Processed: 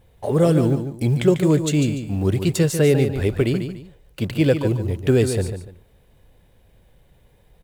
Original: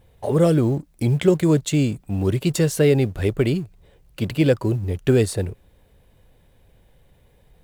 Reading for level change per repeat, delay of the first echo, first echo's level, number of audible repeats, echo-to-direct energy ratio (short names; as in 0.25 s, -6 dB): -11.0 dB, 0.146 s, -8.5 dB, 2, -8.0 dB